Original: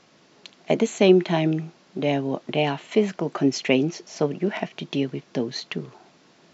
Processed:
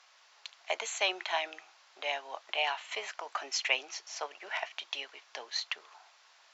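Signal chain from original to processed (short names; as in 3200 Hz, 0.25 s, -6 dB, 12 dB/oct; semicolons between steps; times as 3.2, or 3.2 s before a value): HPF 820 Hz 24 dB/oct; gain -2 dB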